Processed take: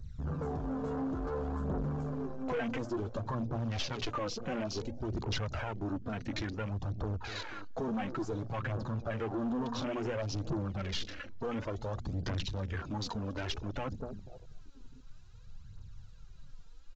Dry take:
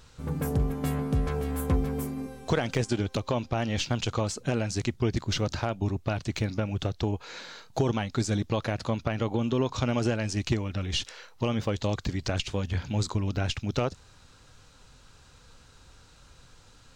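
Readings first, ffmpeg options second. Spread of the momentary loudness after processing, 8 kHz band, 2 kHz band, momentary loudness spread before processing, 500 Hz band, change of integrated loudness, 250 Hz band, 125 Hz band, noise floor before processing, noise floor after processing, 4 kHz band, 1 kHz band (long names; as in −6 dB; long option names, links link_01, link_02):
6 LU, −11.5 dB, −6.0 dB, 4 LU, −7.0 dB, −7.5 dB, −6.5 dB, −8.5 dB, −55 dBFS, −51 dBFS, −7.0 dB, −5.0 dB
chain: -filter_complex "[0:a]asplit=2[link_01][link_02];[link_02]adelay=244,lowpass=frequency=1400:poles=1,volume=-19dB,asplit=2[link_03][link_04];[link_04]adelay=244,lowpass=frequency=1400:poles=1,volume=0.51,asplit=2[link_05][link_06];[link_06]adelay=244,lowpass=frequency=1400:poles=1,volume=0.51,asplit=2[link_07][link_08];[link_08]adelay=244,lowpass=frequency=1400:poles=1,volume=0.51[link_09];[link_01][link_03][link_05][link_07][link_09]amix=inputs=5:normalize=0,acrossover=split=5300[link_10][link_11];[link_10]alimiter=limit=-20.5dB:level=0:latency=1:release=42[link_12];[link_12][link_11]amix=inputs=2:normalize=0,adynamicequalizer=threshold=0.00251:dfrequency=2500:dqfactor=3:tfrequency=2500:tqfactor=3:attack=5:release=100:ratio=0.375:range=1.5:mode=cutabove:tftype=bell,asplit=2[link_13][link_14];[link_14]aeval=exprs='(mod(50.1*val(0)+1,2)-1)/50.1':channel_layout=same,volume=-11dB[link_15];[link_13][link_15]amix=inputs=2:normalize=0,flanger=delay=0.5:depth=8.2:regen=36:speed=0.16:shape=sinusoidal,acrossover=split=160|3000[link_16][link_17][link_18];[link_16]acompressor=threshold=-40dB:ratio=6[link_19];[link_19][link_17][link_18]amix=inputs=3:normalize=0,aphaser=in_gain=1:out_gain=1:delay=4.5:decay=0.57:speed=0.57:type=triangular,bandreject=frequency=60:width_type=h:width=6,bandreject=frequency=120:width_type=h:width=6,bandreject=frequency=180:width_type=h:width=6,bandreject=frequency=240:width_type=h:width=6,aeval=exprs='(tanh(56.2*val(0)+0.15)-tanh(0.15))/56.2':channel_layout=same,aresample=16000,aresample=44100,acompressor=mode=upward:threshold=-57dB:ratio=2.5,afwtdn=0.00447,volume=4.5dB"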